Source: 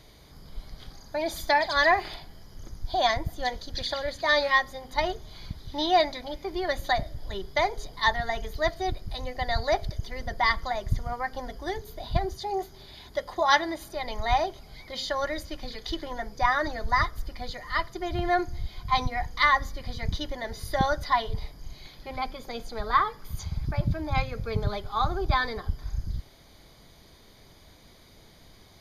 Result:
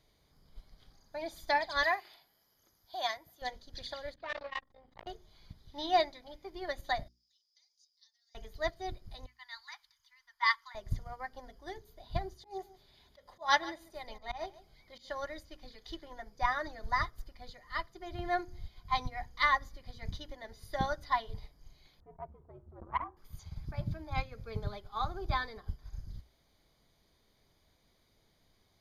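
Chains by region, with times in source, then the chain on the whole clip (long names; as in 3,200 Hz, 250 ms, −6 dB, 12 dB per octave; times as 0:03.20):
0:01.83–0:03.42: high-pass filter 740 Hz 6 dB per octave + parametric band 12,000 Hz +13 dB 0.21 octaves
0:04.14–0:05.07: high-frequency loss of the air 300 metres + saturating transformer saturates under 1,600 Hz
0:07.08–0:08.35: downward compressor 4 to 1, threshold −26 dBFS + four-pole ladder band-pass 5,600 Hz, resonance 80%
0:09.26–0:10.75: elliptic high-pass filter 960 Hz + multiband upward and downward expander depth 40%
0:12.36–0:15.10: volume swells 127 ms + single-tap delay 144 ms −12.5 dB
0:22.00–0:23.17: Chebyshev low-pass filter 1,200 Hz, order 3 + frequency shifter −95 Hz + saturating transformer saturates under 770 Hz
whole clip: mains-hum notches 60/120/180/240/300/360 Hz; expander for the loud parts 1.5 to 1, over −40 dBFS; level −5 dB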